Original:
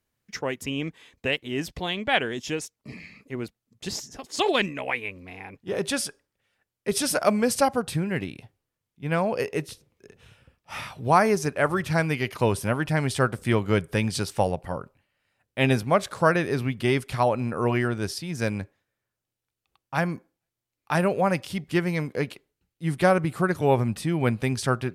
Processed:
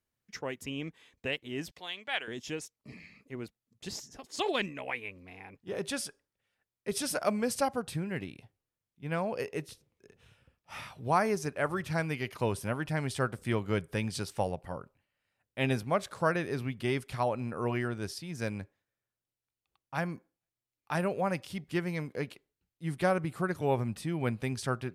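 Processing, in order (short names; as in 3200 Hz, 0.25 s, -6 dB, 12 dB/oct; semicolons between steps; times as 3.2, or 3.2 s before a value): 1.71–2.28 HPF 1300 Hz 6 dB/oct; gain -8 dB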